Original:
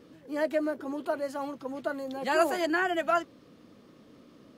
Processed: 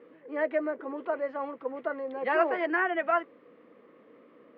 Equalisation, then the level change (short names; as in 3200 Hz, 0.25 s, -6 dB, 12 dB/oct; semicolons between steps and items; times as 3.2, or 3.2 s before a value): speaker cabinet 270–2600 Hz, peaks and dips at 480 Hz +9 dB, 1100 Hz +5 dB, 2000 Hz +7 dB; -2.0 dB